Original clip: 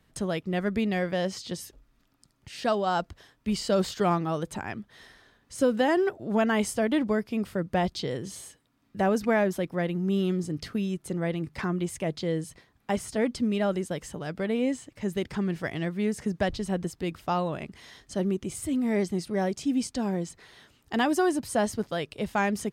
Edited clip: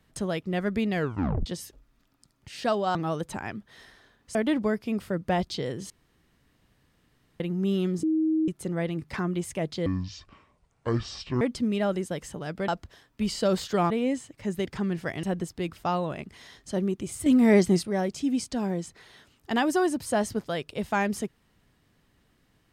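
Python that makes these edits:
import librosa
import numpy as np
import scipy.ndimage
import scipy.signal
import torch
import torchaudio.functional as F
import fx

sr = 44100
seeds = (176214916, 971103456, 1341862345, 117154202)

y = fx.edit(x, sr, fx.tape_stop(start_s=0.95, length_s=0.51),
    fx.move(start_s=2.95, length_s=1.22, to_s=14.48),
    fx.cut(start_s=5.57, length_s=1.23),
    fx.room_tone_fill(start_s=8.35, length_s=1.5),
    fx.bleep(start_s=10.48, length_s=0.45, hz=316.0, db=-21.0),
    fx.speed_span(start_s=12.31, length_s=0.9, speed=0.58),
    fx.cut(start_s=15.81, length_s=0.85),
    fx.clip_gain(start_s=18.69, length_s=0.57, db=7.5), tone=tone)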